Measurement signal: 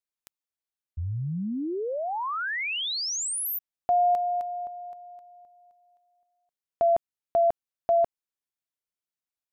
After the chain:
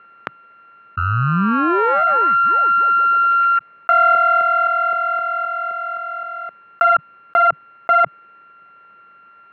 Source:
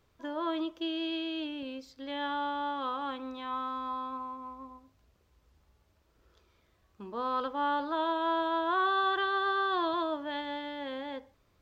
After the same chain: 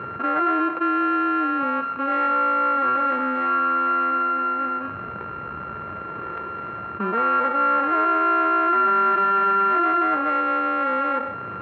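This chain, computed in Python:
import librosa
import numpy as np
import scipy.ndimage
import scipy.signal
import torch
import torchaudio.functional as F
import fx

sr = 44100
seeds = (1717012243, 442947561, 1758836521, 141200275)

y = np.r_[np.sort(x[:len(x) // 32 * 32].reshape(-1, 32), axis=1).ravel(), x[len(x) // 32 * 32:]]
y = fx.cabinet(y, sr, low_hz=130.0, low_slope=24, high_hz=2000.0, hz=(150.0, 270.0, 770.0, 1300.0), db=(-4, -6, -4, 7))
y = fx.env_flatten(y, sr, amount_pct=70)
y = y * 10.0 ** (5.5 / 20.0)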